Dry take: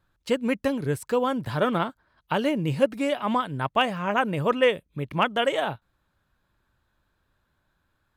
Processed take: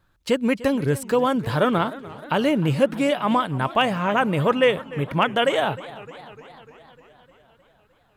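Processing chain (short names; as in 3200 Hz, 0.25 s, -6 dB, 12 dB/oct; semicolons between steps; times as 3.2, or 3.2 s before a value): in parallel at -1 dB: limiter -19.5 dBFS, peak gain reduction 10.5 dB; on the sum: warbling echo 0.303 s, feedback 65%, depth 154 cents, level -18 dB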